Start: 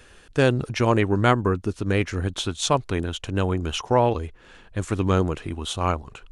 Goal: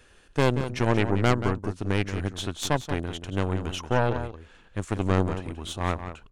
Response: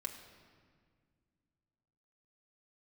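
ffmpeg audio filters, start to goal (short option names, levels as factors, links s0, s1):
-filter_complex "[0:a]aeval=exprs='0.596*(cos(1*acos(clip(val(0)/0.596,-1,1)))-cos(1*PI/2))+0.168*(cos(4*acos(clip(val(0)/0.596,-1,1)))-cos(4*PI/2))':c=same,asplit=2[s0][s1];[s1]adelay=180.8,volume=0.316,highshelf=f=4000:g=-4.07[s2];[s0][s2]amix=inputs=2:normalize=0,volume=0.501"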